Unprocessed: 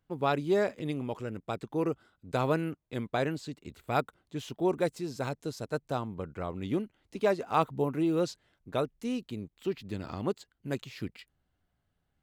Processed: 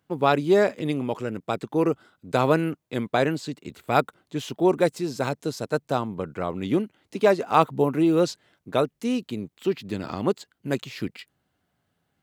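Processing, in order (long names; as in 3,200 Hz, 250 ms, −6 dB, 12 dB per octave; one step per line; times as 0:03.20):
high-pass filter 130 Hz 12 dB per octave
level +8 dB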